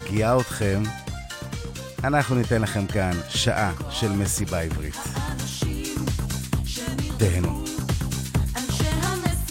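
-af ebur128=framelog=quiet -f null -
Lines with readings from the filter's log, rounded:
Integrated loudness:
  I:         -25.3 LUFS
  Threshold: -35.3 LUFS
Loudness range:
  LRA:         2.7 LU
  Threshold: -45.4 LUFS
  LRA low:   -26.7 LUFS
  LRA high:  -24.0 LUFS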